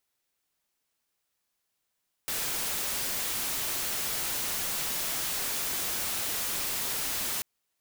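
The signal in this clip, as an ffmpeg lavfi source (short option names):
-f lavfi -i "anoisesrc=c=white:a=0.0461:d=5.14:r=44100:seed=1"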